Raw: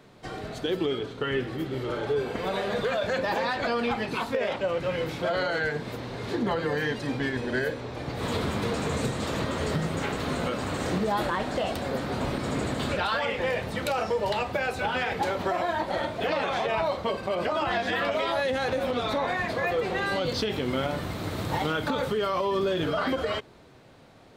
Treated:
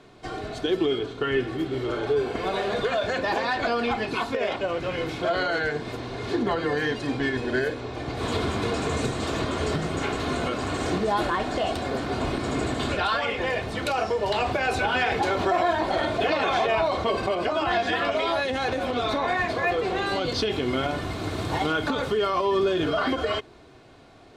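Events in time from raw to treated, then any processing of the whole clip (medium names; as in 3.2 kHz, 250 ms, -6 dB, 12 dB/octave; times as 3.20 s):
14.34–17.34 s: level flattener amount 50%
whole clip: low-pass 9.4 kHz 12 dB/octave; band-stop 1.9 kHz, Q 22; comb 2.8 ms, depth 39%; trim +2 dB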